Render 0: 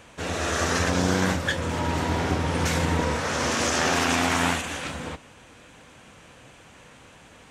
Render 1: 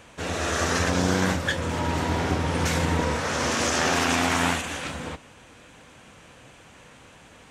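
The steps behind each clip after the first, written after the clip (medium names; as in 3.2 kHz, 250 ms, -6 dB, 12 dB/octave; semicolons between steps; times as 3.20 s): no audible change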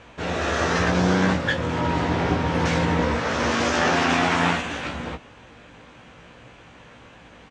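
distance through air 130 m; doubling 17 ms -5 dB; trim +2.5 dB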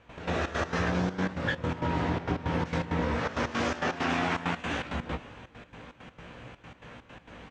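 tone controls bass +2 dB, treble -5 dB; compression 4:1, threshold -26 dBFS, peak gain reduction 10 dB; trance gate ".x.xx.x.xxxx" 165 bpm -12 dB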